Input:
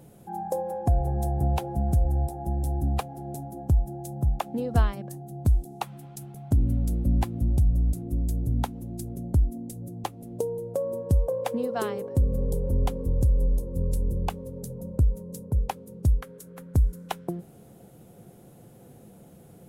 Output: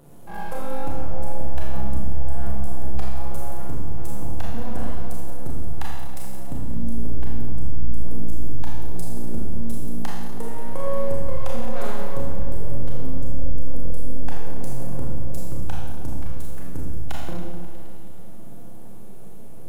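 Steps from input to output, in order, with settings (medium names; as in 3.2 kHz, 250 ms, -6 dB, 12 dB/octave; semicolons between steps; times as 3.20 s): compression, threshold -30 dBFS, peak gain reduction 13.5 dB; half-wave rectifier; delay with an opening low-pass 107 ms, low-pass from 200 Hz, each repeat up 1 oct, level -6 dB; Schroeder reverb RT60 1.3 s, combs from 27 ms, DRR -4 dB; trim +2 dB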